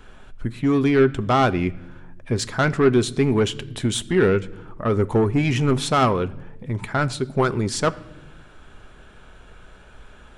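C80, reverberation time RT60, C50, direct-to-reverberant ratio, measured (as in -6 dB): 22.0 dB, no single decay rate, 20.0 dB, 11.0 dB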